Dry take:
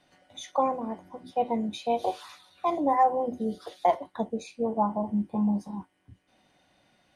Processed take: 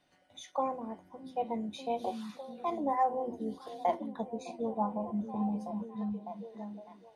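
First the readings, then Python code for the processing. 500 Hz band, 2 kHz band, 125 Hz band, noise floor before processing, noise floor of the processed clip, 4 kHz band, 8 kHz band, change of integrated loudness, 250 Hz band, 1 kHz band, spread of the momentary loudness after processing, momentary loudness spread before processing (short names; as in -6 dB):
-6.5 dB, -7.0 dB, -5.5 dB, -69 dBFS, -63 dBFS, -7.0 dB, n/a, -7.5 dB, -5.5 dB, -6.5 dB, 12 LU, 16 LU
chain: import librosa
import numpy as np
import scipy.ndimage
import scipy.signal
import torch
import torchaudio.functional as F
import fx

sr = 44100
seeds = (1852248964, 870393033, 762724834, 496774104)

y = fx.echo_stepped(x, sr, ms=604, hz=190.0, octaves=0.7, feedback_pct=70, wet_db=-4.5)
y = F.gain(torch.from_numpy(y), -7.0).numpy()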